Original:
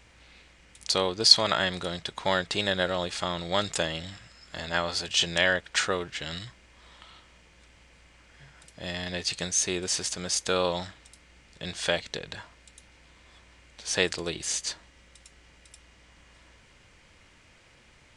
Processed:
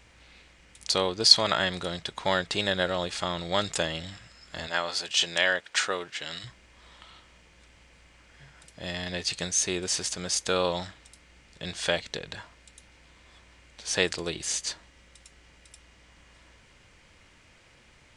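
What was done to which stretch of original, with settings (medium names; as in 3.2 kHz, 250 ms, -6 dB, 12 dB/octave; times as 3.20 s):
4.67–6.44 s: high-pass 440 Hz 6 dB/octave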